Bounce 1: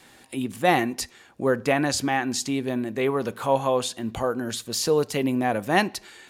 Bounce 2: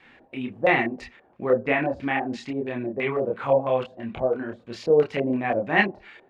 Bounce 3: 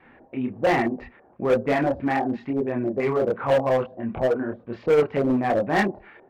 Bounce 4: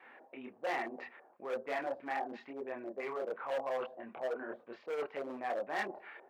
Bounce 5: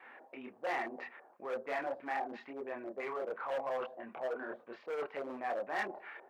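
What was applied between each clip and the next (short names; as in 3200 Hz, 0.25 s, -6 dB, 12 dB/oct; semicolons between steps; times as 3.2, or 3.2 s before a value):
LFO low-pass square 3 Hz 620–2300 Hz; chorus voices 4, 1.1 Hz, delay 28 ms, depth 3.2 ms
LPF 1400 Hz 12 dB/oct; in parallel at -4 dB: wavefolder -22 dBFS
reverse; compressor 4:1, threshold -31 dBFS, peak gain reduction 14 dB; reverse; HPF 540 Hz 12 dB/oct; gain -2 dB
in parallel at -6 dB: soft clip -39 dBFS, distortion -8 dB; on the sum: bell 1300 Hz +3.5 dB 2.1 oct; gain -4 dB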